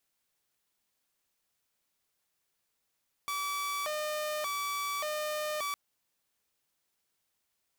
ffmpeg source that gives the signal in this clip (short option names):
-f lavfi -i "aevalsrc='0.0335*(2*mod((878.5*t+271.5/0.86*(0.5-abs(mod(0.86*t,1)-0.5))),1)-1)':d=2.46:s=44100"